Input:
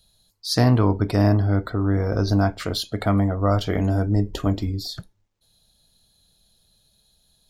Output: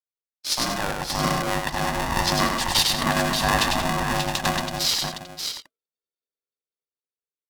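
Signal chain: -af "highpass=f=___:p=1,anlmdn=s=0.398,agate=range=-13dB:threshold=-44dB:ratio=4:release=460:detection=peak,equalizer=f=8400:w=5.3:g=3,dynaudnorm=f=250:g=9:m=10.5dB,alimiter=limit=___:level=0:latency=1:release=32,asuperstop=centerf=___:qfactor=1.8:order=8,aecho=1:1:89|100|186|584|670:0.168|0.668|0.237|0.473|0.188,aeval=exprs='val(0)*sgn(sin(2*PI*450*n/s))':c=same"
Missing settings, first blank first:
1400, -9dB, 2100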